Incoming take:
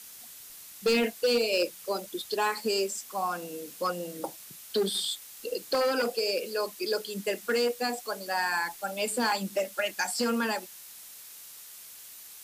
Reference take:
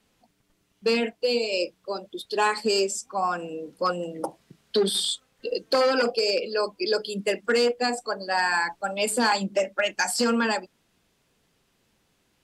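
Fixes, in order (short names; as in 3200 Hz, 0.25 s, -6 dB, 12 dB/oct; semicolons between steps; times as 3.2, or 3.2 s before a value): clip repair -20 dBFS; noise print and reduce 22 dB; gain correction +5 dB, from 2.34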